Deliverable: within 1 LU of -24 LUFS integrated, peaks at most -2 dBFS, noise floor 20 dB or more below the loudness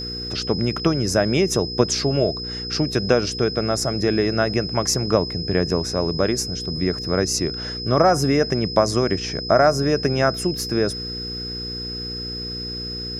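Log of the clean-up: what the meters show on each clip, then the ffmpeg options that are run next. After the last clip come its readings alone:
hum 60 Hz; harmonics up to 480 Hz; hum level -31 dBFS; steady tone 5100 Hz; tone level -29 dBFS; loudness -21.5 LUFS; peak -1.5 dBFS; loudness target -24.0 LUFS
-> -af "bandreject=f=60:t=h:w=4,bandreject=f=120:t=h:w=4,bandreject=f=180:t=h:w=4,bandreject=f=240:t=h:w=4,bandreject=f=300:t=h:w=4,bandreject=f=360:t=h:w=4,bandreject=f=420:t=h:w=4,bandreject=f=480:t=h:w=4"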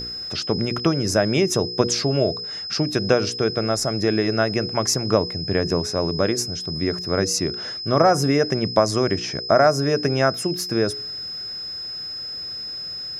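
hum none; steady tone 5100 Hz; tone level -29 dBFS
-> -af "bandreject=f=5.1k:w=30"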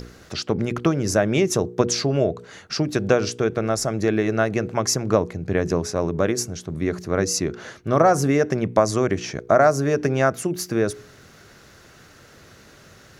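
steady tone none; loudness -22.0 LUFS; peak -1.5 dBFS; loudness target -24.0 LUFS
-> -af "volume=-2dB"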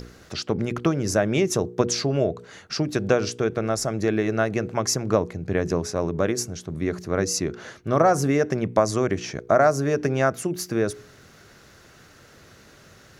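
loudness -24.0 LUFS; peak -3.5 dBFS; noise floor -51 dBFS

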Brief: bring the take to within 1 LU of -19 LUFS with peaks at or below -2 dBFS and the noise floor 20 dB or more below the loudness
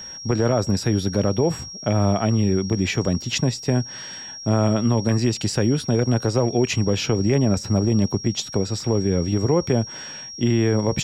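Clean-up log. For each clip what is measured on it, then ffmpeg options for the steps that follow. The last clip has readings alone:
steady tone 5600 Hz; tone level -34 dBFS; loudness -21.5 LUFS; peak -9.5 dBFS; loudness target -19.0 LUFS
-> -af "bandreject=f=5.6k:w=30"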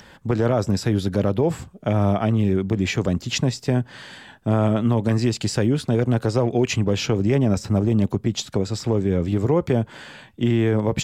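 steady tone none; loudness -21.5 LUFS; peak -10.0 dBFS; loudness target -19.0 LUFS
-> -af "volume=2.5dB"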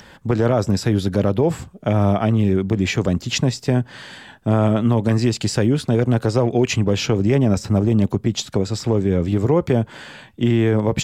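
loudness -19.0 LUFS; peak -7.5 dBFS; noise floor -46 dBFS

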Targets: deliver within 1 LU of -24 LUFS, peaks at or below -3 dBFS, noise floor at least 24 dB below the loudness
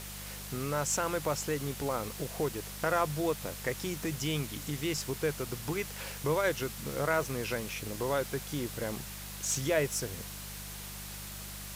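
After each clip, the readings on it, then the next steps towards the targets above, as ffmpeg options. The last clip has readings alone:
hum 50 Hz; harmonics up to 200 Hz; hum level -44 dBFS; noise floor -43 dBFS; noise floor target -58 dBFS; loudness -33.5 LUFS; peak -15.0 dBFS; loudness target -24.0 LUFS
-> -af "bandreject=f=50:t=h:w=4,bandreject=f=100:t=h:w=4,bandreject=f=150:t=h:w=4,bandreject=f=200:t=h:w=4"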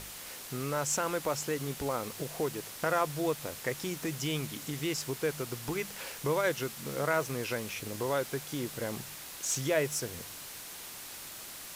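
hum none; noise floor -45 dBFS; noise floor target -58 dBFS
-> -af "afftdn=nr=13:nf=-45"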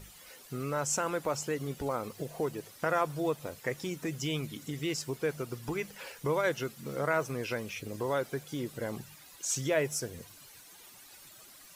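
noise floor -54 dBFS; noise floor target -58 dBFS
-> -af "afftdn=nr=6:nf=-54"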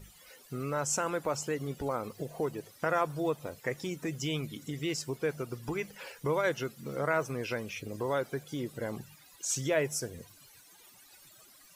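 noise floor -58 dBFS; loudness -34.0 LUFS; peak -15.5 dBFS; loudness target -24.0 LUFS
-> -af "volume=10dB"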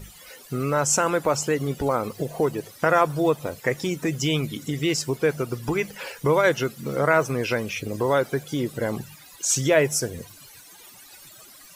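loudness -24.0 LUFS; peak -5.5 dBFS; noise floor -48 dBFS

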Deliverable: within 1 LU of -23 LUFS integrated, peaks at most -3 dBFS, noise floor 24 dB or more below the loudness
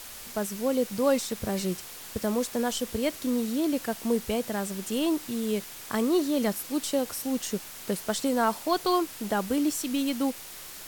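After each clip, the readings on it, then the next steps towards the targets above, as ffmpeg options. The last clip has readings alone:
noise floor -43 dBFS; noise floor target -53 dBFS; loudness -28.5 LUFS; peak -12.0 dBFS; loudness target -23.0 LUFS
-> -af "afftdn=nr=10:nf=-43"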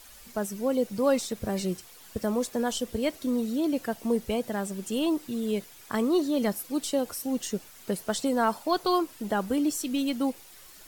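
noise floor -50 dBFS; noise floor target -53 dBFS
-> -af "afftdn=nr=6:nf=-50"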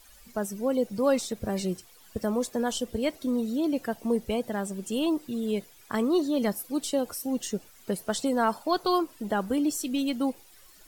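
noise floor -55 dBFS; loudness -29.0 LUFS; peak -12.0 dBFS; loudness target -23.0 LUFS
-> -af "volume=6dB"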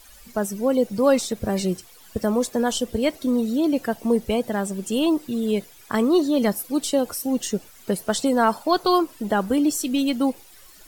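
loudness -23.0 LUFS; peak -6.0 dBFS; noise floor -49 dBFS

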